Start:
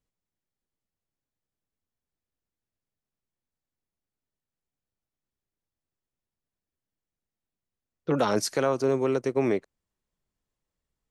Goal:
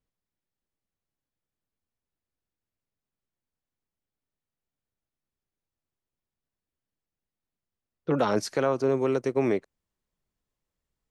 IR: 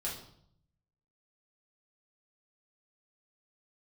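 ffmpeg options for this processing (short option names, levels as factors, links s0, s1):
-af "asetnsamples=n=441:p=0,asendcmd='8.97 highshelf g -2.5',highshelf=f=5900:g=-10.5"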